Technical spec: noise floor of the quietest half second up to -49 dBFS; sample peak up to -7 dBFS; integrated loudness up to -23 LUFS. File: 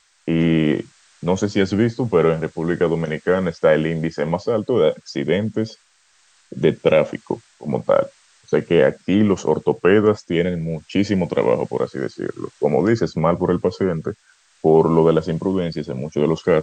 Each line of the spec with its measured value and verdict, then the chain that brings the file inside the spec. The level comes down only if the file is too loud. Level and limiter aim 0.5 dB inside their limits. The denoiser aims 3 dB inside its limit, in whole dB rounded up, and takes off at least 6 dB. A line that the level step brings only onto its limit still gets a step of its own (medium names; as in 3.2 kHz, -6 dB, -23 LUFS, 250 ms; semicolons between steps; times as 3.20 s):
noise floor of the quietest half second -58 dBFS: pass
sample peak -2.5 dBFS: fail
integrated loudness -19.5 LUFS: fail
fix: trim -4 dB; peak limiter -7.5 dBFS